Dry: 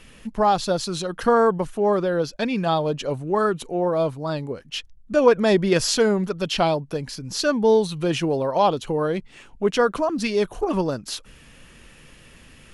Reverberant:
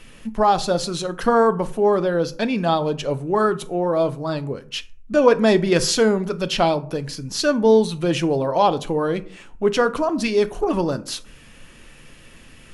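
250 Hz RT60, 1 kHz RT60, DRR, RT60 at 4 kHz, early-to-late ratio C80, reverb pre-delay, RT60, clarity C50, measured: 0.60 s, 0.45 s, 11.0 dB, 0.25 s, 22.5 dB, 3 ms, 0.45 s, 18.5 dB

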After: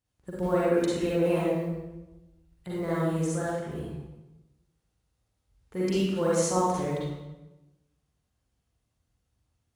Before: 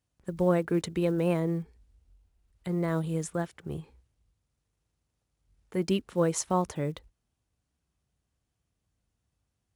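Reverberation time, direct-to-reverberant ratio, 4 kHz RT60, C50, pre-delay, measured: 1.0 s, −7.5 dB, 0.80 s, −4.0 dB, 39 ms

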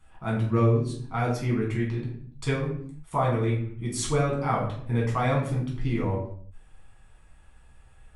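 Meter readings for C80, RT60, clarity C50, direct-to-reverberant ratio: 9.0 dB, 0.60 s, 5.0 dB, −5.0 dB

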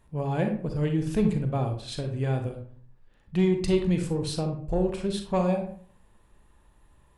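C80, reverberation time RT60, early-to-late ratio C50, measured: 11.5 dB, 0.50 s, 7.0 dB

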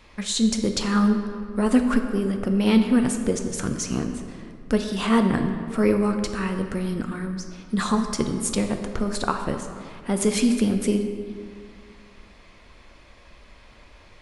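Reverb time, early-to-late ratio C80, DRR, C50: 2.2 s, 8.0 dB, 5.0 dB, 7.0 dB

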